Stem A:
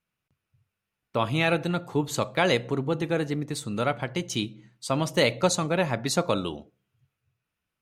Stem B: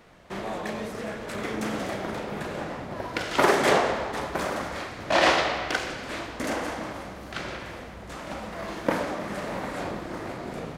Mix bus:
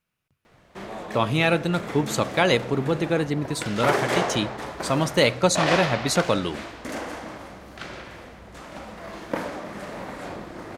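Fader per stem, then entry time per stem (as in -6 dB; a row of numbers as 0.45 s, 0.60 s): +3.0 dB, -3.0 dB; 0.00 s, 0.45 s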